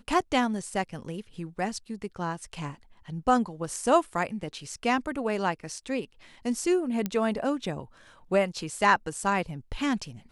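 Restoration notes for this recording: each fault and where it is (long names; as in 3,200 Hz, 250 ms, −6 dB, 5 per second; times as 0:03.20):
0:07.06: click −15 dBFS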